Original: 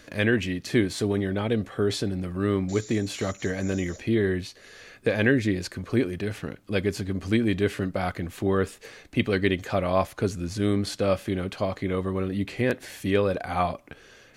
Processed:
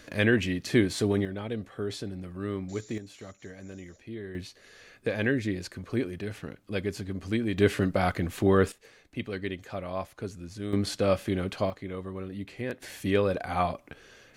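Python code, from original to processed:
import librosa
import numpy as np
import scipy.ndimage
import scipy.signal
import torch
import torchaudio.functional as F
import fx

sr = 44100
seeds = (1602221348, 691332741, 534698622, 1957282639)

y = fx.gain(x, sr, db=fx.steps((0.0, -0.5), (1.25, -8.5), (2.98, -16.0), (4.35, -5.5), (7.58, 2.0), (8.72, -10.5), (10.73, -1.0), (11.7, -9.5), (12.82, -2.0)))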